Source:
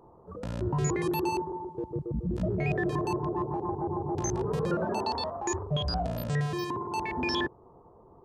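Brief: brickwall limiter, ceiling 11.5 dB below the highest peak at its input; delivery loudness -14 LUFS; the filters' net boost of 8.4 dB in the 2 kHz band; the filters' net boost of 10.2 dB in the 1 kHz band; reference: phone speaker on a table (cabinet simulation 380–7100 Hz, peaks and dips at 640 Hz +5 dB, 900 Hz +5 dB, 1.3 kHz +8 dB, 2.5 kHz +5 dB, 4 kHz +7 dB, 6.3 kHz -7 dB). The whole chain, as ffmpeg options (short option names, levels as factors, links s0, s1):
-af "equalizer=f=1000:t=o:g=4.5,equalizer=f=2000:t=o:g=5,alimiter=level_in=1.33:limit=0.0631:level=0:latency=1,volume=0.75,highpass=f=380:w=0.5412,highpass=f=380:w=1.3066,equalizer=f=640:t=q:w=4:g=5,equalizer=f=900:t=q:w=4:g=5,equalizer=f=1300:t=q:w=4:g=8,equalizer=f=2500:t=q:w=4:g=5,equalizer=f=4000:t=q:w=4:g=7,equalizer=f=6300:t=q:w=4:g=-7,lowpass=f=7100:w=0.5412,lowpass=f=7100:w=1.3066,volume=8.41"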